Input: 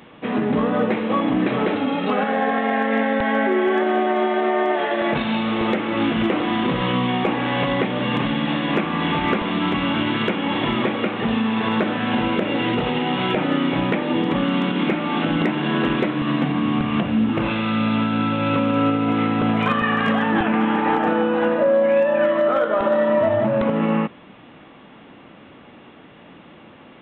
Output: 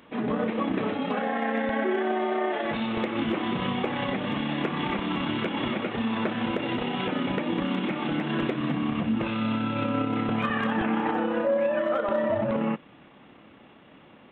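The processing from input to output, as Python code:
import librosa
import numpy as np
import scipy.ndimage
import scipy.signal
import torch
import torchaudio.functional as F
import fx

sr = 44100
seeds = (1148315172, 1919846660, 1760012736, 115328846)

y = fx.stretch_grains(x, sr, factor=0.53, grain_ms=62.0)
y = F.gain(torch.from_numpy(y), -6.0).numpy()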